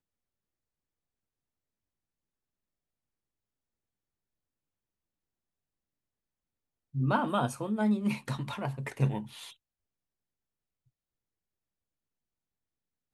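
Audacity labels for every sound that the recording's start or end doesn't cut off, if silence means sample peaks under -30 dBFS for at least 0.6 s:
6.960000	9.200000	sound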